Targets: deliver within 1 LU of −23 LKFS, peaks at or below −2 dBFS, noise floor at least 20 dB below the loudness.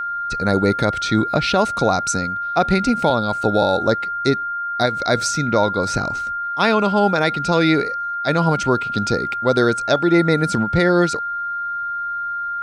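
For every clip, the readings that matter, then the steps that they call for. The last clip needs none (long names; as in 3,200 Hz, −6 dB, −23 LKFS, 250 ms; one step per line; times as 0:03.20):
interfering tone 1,400 Hz; level of the tone −22 dBFS; integrated loudness −19.0 LKFS; sample peak −4.5 dBFS; target loudness −23.0 LKFS
→ notch filter 1,400 Hz, Q 30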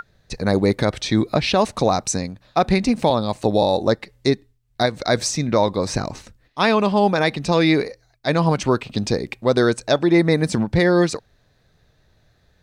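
interfering tone none found; integrated loudness −20.0 LKFS; sample peak −5.5 dBFS; target loudness −23.0 LKFS
→ level −3 dB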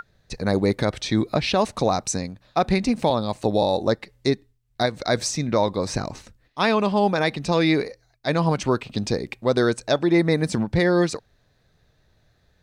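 integrated loudness −23.0 LKFS; sample peak −8.5 dBFS; background noise floor −64 dBFS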